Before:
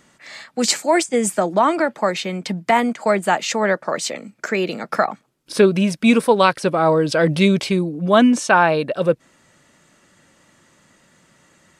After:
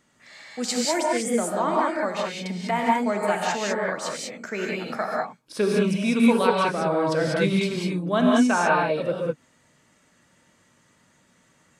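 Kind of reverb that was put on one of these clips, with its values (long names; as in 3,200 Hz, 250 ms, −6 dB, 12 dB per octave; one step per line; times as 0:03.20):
reverb whose tail is shaped and stops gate 220 ms rising, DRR −3 dB
level −10.5 dB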